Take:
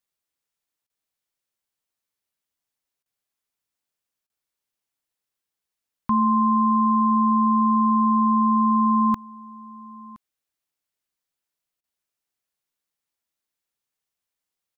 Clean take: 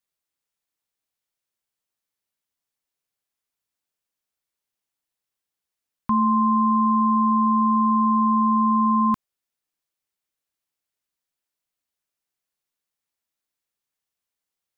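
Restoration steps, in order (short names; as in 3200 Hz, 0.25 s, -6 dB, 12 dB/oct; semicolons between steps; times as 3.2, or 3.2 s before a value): interpolate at 0.87/3.03/4.27/11.81, 26 ms; inverse comb 1.018 s -22 dB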